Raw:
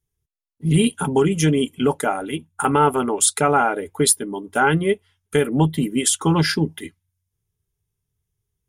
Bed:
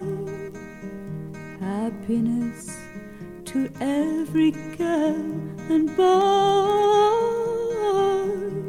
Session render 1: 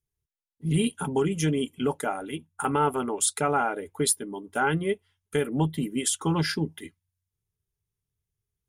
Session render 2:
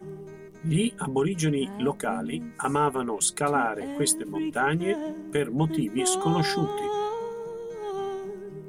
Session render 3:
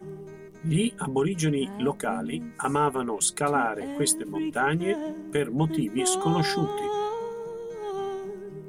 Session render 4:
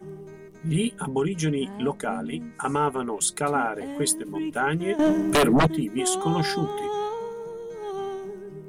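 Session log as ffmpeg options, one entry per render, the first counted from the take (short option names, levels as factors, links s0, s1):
-af "volume=0.422"
-filter_complex "[1:a]volume=0.282[s0];[0:a][s0]amix=inputs=2:normalize=0"
-af anull
-filter_complex "[0:a]asettb=1/sr,asplit=3[s0][s1][s2];[s0]atrim=end=1.104[s3];[s1]atrim=start=1.1:end=3.04,asetpts=PTS-STARTPTS,afade=t=in:d=0.004:c=qsin,afade=t=out:st=1.936:d=0.004:c=qsin,lowpass=10000[s4];[s2]atrim=start=3.036[s5];[s3][s4]acrossfade=d=0.004:c1=hsin:c2=qsin[s6];[s6][s5]acrossfade=d=0.004:c1=qsin:c2=hsin,asettb=1/sr,asplit=3[s7][s8][s9];[s7]atrim=end=4.994[s10];[s8]atrim=start=4.99:end=5.67,asetpts=PTS-STARTPTS,afade=t=in:d=0.004:c=qsin,afade=t=out:st=0.676:d=0.004:c=qsin,aeval=exprs='0.2*sin(PI/2*3.55*val(0)/0.2)':c=same[s11];[s9]atrim=start=5.666[s12];[s10][s11]acrossfade=d=0.004:c1=hsin:c2=qsin[s13];[s13][s12]acrossfade=d=0.004:c1=qsin:c2=hsin"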